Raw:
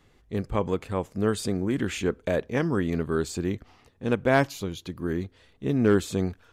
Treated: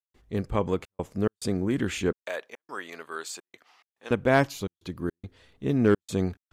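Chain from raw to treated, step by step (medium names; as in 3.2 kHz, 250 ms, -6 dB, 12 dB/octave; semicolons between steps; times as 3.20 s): trance gate ".xxxxx.xx" 106 bpm -60 dB; 2.23–4.11 s: high-pass 880 Hz 12 dB/octave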